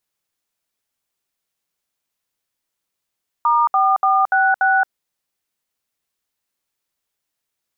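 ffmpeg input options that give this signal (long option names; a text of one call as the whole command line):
ffmpeg -f lavfi -i "aevalsrc='0.178*clip(min(mod(t,0.29),0.223-mod(t,0.29))/0.002,0,1)*(eq(floor(t/0.29),0)*(sin(2*PI*941*mod(t,0.29))+sin(2*PI*1209*mod(t,0.29)))+eq(floor(t/0.29),1)*(sin(2*PI*770*mod(t,0.29))+sin(2*PI*1209*mod(t,0.29)))+eq(floor(t/0.29),2)*(sin(2*PI*770*mod(t,0.29))+sin(2*PI*1209*mod(t,0.29)))+eq(floor(t/0.29),3)*(sin(2*PI*770*mod(t,0.29))+sin(2*PI*1477*mod(t,0.29)))+eq(floor(t/0.29),4)*(sin(2*PI*770*mod(t,0.29))+sin(2*PI*1477*mod(t,0.29))))':duration=1.45:sample_rate=44100" out.wav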